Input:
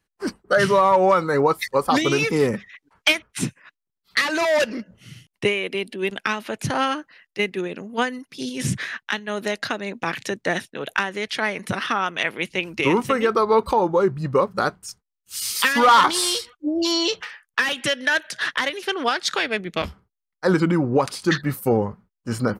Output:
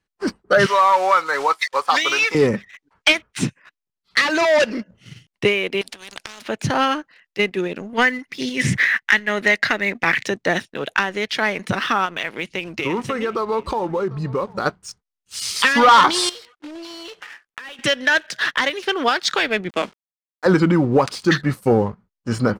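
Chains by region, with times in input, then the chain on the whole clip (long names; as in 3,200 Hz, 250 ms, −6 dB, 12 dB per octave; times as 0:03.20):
0:00.66–0:02.35: one scale factor per block 5 bits + resonant band-pass 1,200 Hz, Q 0.68 + spectral tilt +4.5 dB per octave
0:05.81–0:06.42: low-shelf EQ 350 Hz −9 dB + downward compressor 4 to 1, threshold −28 dBFS + every bin compressed towards the loudest bin 4 to 1
0:07.93–0:10.25: parametric band 2,000 Hz +14 dB 0.5 octaves + upward compression, threshold −36 dBFS
0:12.05–0:14.66: downward compressor 2.5 to 1, threshold −26 dBFS + single-tap delay 746 ms −22 dB
0:16.29–0:17.79: one scale factor per block 3 bits + bass and treble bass −12 dB, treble −7 dB + downward compressor 12 to 1, threshold −34 dBFS
0:19.69–0:20.46: running median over 9 samples + high-pass filter 210 Hz 24 dB per octave + bit-depth reduction 8 bits, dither none
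whole clip: low-pass filter 7,100 Hz 12 dB per octave; leveller curve on the samples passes 1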